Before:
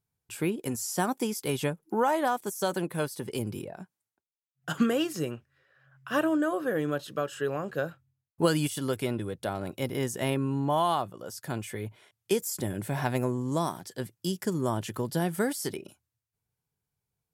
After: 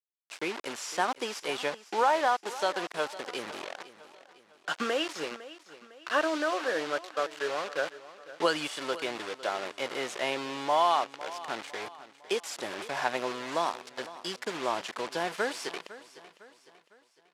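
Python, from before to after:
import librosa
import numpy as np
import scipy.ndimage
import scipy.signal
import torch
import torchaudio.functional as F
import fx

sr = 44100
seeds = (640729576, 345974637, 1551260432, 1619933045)

p1 = fx.quant_dither(x, sr, seeds[0], bits=6, dither='none')
p2 = fx.bandpass_edges(p1, sr, low_hz=580.0, high_hz=4800.0)
p3 = p2 + fx.echo_feedback(p2, sr, ms=505, feedback_pct=45, wet_db=-16.5, dry=0)
y = p3 * 10.0 ** (3.0 / 20.0)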